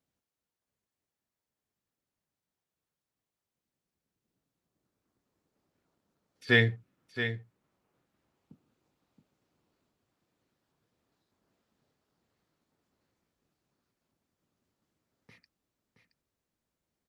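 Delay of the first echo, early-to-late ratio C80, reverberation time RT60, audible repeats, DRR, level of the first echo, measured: 672 ms, no reverb audible, no reverb audible, 1, no reverb audible, −9.5 dB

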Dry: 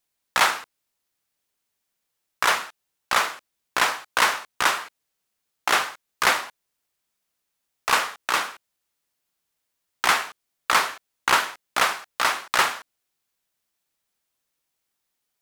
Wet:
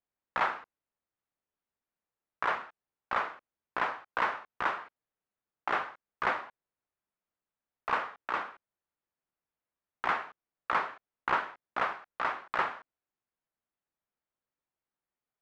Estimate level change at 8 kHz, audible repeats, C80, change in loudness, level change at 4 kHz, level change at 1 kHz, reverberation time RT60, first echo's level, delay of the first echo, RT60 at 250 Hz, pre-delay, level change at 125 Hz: below −30 dB, no echo audible, no reverb audible, −10.5 dB, −20.5 dB, −8.0 dB, no reverb audible, no echo audible, no echo audible, no reverb audible, no reverb audible, −7.0 dB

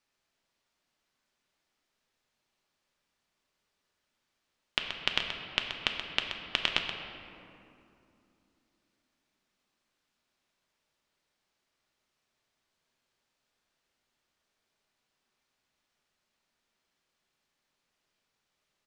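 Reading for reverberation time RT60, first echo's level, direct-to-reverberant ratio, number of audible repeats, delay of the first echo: 2.8 s, −9.0 dB, 1.5 dB, 1, 128 ms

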